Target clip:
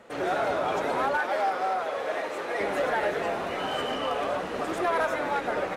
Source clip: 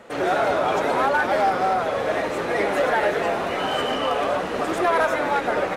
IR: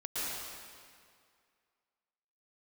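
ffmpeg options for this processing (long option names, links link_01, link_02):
-filter_complex "[0:a]asettb=1/sr,asplit=3[link_01][link_02][link_03];[link_01]atrim=end=1.174[link_04];[link_02]atrim=start=1.17:end=2.61,asetpts=PTS-STARTPTS,afade=type=in:duration=0.004:curve=qsin,afade=type=out:start_time=1.436:duration=0.004:curve=qsin,bass=frequency=250:gain=-15,treble=frequency=4000:gain=-1[link_05];[link_03]atrim=start=2.606[link_06];[link_04][link_05]acrossfade=duration=0.004:curve1=hsin:curve2=qsin[link_07];[link_07][link_06]acrossfade=duration=0.004:curve1=qsin:curve2=hsin,volume=-6dB"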